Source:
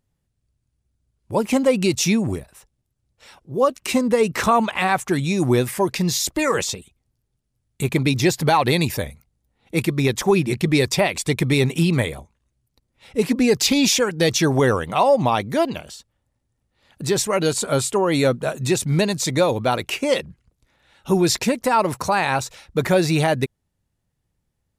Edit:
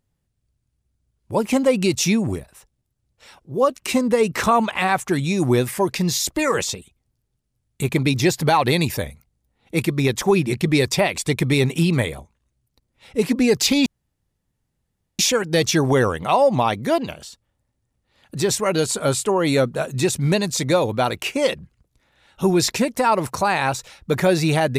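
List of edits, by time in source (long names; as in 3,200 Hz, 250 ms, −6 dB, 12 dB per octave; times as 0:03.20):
0:13.86: splice in room tone 1.33 s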